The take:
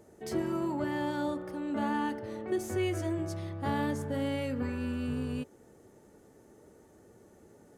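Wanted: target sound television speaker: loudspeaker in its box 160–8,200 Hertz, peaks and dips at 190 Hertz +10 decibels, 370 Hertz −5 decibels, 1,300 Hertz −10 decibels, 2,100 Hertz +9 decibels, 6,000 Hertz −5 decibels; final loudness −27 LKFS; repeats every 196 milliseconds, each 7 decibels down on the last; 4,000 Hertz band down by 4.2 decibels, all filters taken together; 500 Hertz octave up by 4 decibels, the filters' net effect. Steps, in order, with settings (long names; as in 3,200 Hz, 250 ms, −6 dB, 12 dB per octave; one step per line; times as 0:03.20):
loudspeaker in its box 160–8,200 Hz, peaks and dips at 190 Hz +10 dB, 370 Hz −5 dB, 1,300 Hz −10 dB, 2,100 Hz +9 dB, 6,000 Hz −5 dB
parametric band 500 Hz +8 dB
parametric band 4,000 Hz −7 dB
repeating echo 196 ms, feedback 45%, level −7 dB
level +3.5 dB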